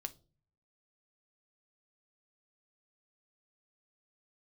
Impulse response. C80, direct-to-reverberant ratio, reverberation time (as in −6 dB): 27.0 dB, 8.5 dB, 0.40 s